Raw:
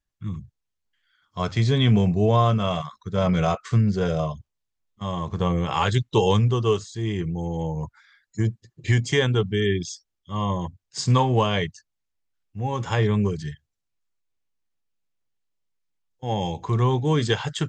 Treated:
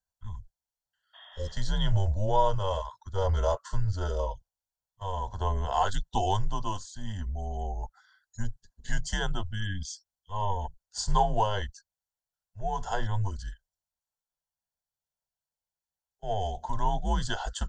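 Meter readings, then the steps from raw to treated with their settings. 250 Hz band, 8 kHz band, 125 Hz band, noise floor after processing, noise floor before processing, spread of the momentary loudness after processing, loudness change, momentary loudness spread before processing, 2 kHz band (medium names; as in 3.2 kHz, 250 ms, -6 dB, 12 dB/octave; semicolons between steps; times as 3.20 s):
-16.0 dB, -3.0 dB, -10.0 dB, under -85 dBFS, -80 dBFS, 14 LU, -8.0 dB, 15 LU, -8.5 dB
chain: comb of notches 1.3 kHz; spectral replace 1.17–1.49 s, 680–3800 Hz after; static phaser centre 1 kHz, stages 4; frequency shift -100 Hz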